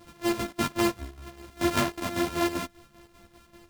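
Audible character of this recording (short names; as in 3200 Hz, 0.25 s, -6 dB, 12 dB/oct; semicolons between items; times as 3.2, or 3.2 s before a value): a buzz of ramps at a fixed pitch in blocks of 128 samples; chopped level 5.1 Hz, depth 60%, duty 60%; a shimmering, thickened sound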